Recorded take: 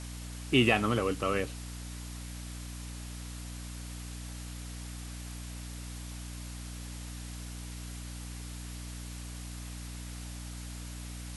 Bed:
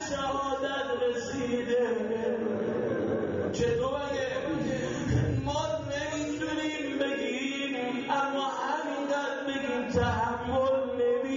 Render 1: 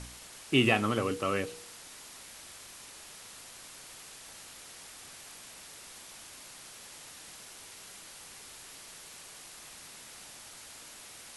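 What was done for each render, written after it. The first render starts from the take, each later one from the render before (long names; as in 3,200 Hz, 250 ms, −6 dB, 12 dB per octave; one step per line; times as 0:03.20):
hum removal 60 Hz, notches 8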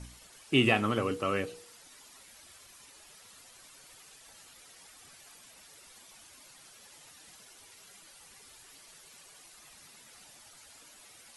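broadband denoise 10 dB, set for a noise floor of −50 dBFS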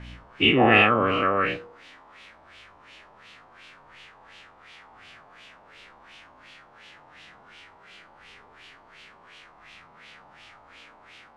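every bin's largest magnitude spread in time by 240 ms
auto-filter low-pass sine 2.8 Hz 910–3,000 Hz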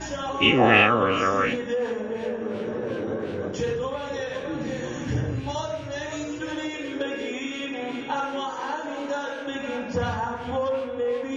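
mix in bed +0.5 dB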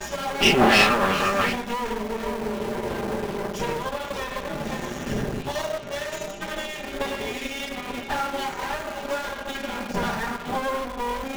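lower of the sound and its delayed copy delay 5 ms
in parallel at −9 dB: bit reduction 5 bits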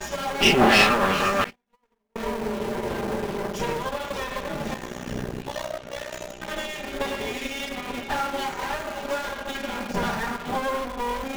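0:01.44–0:02.16: noise gate −22 dBFS, range −48 dB
0:04.74–0:06.48: amplitude modulation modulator 62 Hz, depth 80%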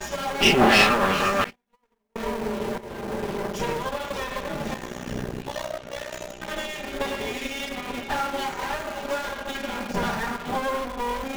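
0:02.78–0:03.27: fade in, from −14 dB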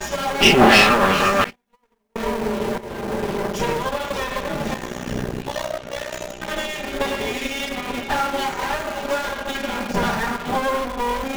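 level +5 dB
brickwall limiter −1 dBFS, peak gain reduction 2.5 dB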